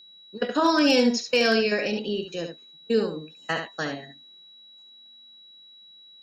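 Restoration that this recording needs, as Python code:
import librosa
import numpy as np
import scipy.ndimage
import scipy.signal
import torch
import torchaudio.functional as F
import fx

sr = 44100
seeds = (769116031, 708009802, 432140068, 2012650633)

y = fx.fix_declip(x, sr, threshold_db=-11.5)
y = fx.notch(y, sr, hz=3900.0, q=30.0)
y = fx.fix_echo_inverse(y, sr, delay_ms=71, level_db=-7.0)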